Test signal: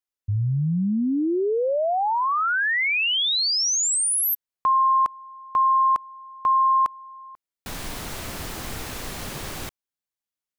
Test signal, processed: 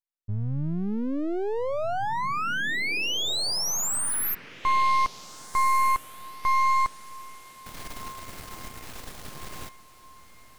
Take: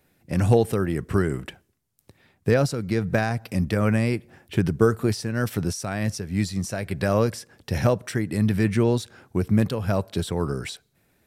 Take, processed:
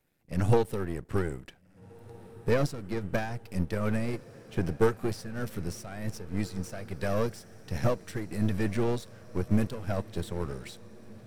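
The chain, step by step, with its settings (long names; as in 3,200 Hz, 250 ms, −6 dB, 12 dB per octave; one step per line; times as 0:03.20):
gain on one half-wave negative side −12 dB
feedback delay with all-pass diffusion 1,691 ms, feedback 54%, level −15 dB
expander for the loud parts 1.5 to 1, over −33 dBFS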